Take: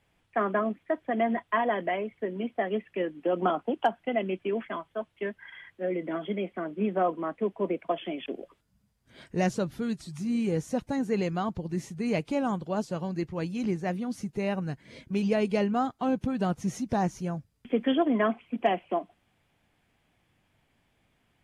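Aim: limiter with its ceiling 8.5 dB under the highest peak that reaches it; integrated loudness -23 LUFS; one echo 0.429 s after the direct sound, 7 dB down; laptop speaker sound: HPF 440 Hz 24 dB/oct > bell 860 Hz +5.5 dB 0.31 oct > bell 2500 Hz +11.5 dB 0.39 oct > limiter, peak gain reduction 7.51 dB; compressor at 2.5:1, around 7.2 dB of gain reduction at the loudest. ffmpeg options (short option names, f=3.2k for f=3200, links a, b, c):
-af "acompressor=threshold=-30dB:ratio=2.5,alimiter=level_in=1.5dB:limit=-24dB:level=0:latency=1,volume=-1.5dB,highpass=f=440:w=0.5412,highpass=f=440:w=1.3066,equalizer=f=860:t=o:w=0.31:g=5.5,equalizer=f=2.5k:t=o:w=0.39:g=11.5,aecho=1:1:429:0.447,volume=17dB,alimiter=limit=-12.5dB:level=0:latency=1"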